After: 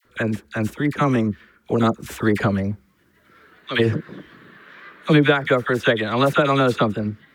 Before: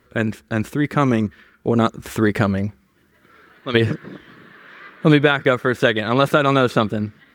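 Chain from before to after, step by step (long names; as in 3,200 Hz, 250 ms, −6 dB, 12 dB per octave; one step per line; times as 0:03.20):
all-pass dispersion lows, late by 51 ms, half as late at 1,100 Hz
level −1.5 dB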